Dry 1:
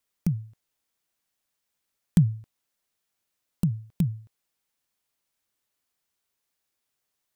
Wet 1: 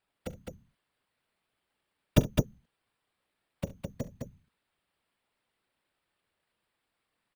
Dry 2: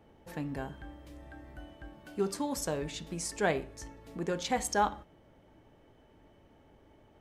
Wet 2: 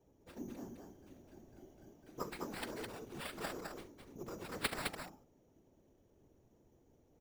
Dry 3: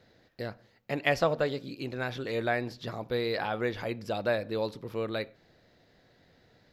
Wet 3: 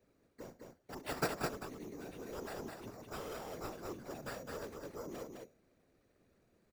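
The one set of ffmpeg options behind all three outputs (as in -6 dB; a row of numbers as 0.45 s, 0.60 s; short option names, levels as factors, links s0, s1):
-filter_complex "[0:a]acrossover=split=100|5300[s0][s1][s2];[s0]acompressor=threshold=0.00141:ratio=6[s3];[s1]bandpass=f=320:t=q:w=1.2:csg=0[s4];[s2]acontrast=38[s5];[s3][s4][s5]amix=inputs=3:normalize=0,acrusher=samples=7:mix=1:aa=0.000001,aeval=exprs='0.188*(cos(1*acos(clip(val(0)/0.188,-1,1)))-cos(1*PI/2))+0.0211*(cos(2*acos(clip(val(0)/0.188,-1,1)))-cos(2*PI/2))+0.0596*(cos(3*acos(clip(val(0)/0.188,-1,1)))-cos(3*PI/2))+0.00841*(cos(4*acos(clip(val(0)/0.188,-1,1)))-cos(4*PI/2))+0.00668*(cos(7*acos(clip(val(0)/0.188,-1,1)))-cos(7*PI/2))':c=same,afftfilt=real='hypot(re,im)*cos(2*PI*random(0))':imag='hypot(re,im)*sin(2*PI*random(1))':win_size=512:overlap=0.75,asplit=2[s6][s7];[s7]aecho=0:1:42|68|210:0.126|0.126|0.631[s8];[s6][s8]amix=inputs=2:normalize=0,volume=4.47"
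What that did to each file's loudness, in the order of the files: -5.5 LU, -10.5 LU, -12.0 LU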